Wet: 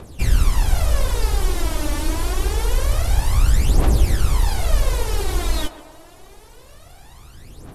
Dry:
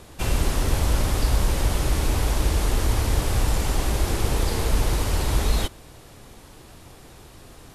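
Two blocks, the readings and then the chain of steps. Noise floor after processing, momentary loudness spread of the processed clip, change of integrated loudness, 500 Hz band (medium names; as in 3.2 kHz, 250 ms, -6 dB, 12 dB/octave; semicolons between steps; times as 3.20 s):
-45 dBFS, 6 LU, +2.5 dB, +0.5 dB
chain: phaser 0.26 Hz, delay 3.5 ms, feedback 72%; on a send: band-passed feedback delay 142 ms, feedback 65%, band-pass 740 Hz, level -10.5 dB; on the sum: trim -2.5 dB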